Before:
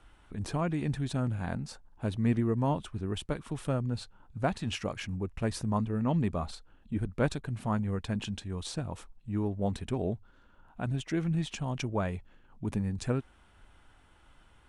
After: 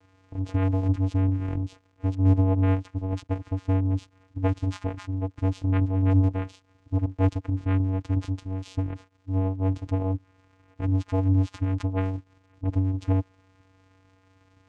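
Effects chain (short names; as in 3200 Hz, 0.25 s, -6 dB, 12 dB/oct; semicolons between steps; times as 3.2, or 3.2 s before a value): crackle 330/s -44 dBFS; vocoder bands 4, square 94.7 Hz; gain +8 dB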